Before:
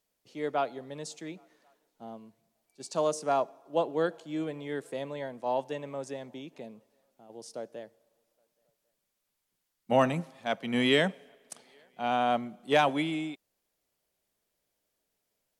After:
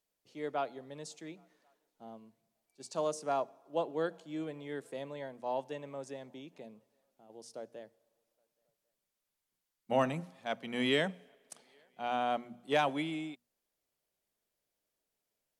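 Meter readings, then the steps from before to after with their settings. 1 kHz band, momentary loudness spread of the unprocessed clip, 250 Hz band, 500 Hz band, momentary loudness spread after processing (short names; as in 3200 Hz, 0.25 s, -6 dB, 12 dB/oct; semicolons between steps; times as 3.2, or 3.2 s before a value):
-5.5 dB, 22 LU, -6.0 dB, -5.5 dB, 22 LU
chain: notches 60/120/180/240 Hz; gain -5.5 dB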